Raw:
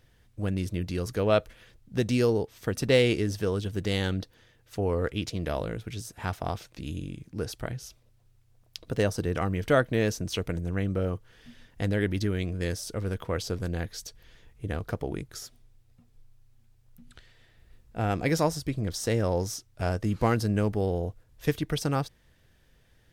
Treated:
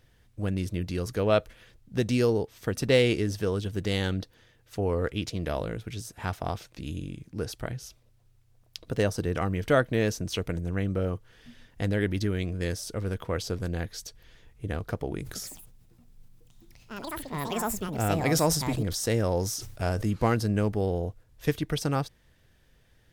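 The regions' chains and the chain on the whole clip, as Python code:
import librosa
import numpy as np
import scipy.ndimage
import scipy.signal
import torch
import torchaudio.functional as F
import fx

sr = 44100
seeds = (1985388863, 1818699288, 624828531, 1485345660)

y = fx.chain(x, sr, fx.high_shelf(hz=7600.0, db=6.0),
    fx.echo_pitch(ms=160, semitones=6, count=2, db_per_echo=-6.0),
    fx.sustainer(db_per_s=59.0), at=(15.19, 20.11))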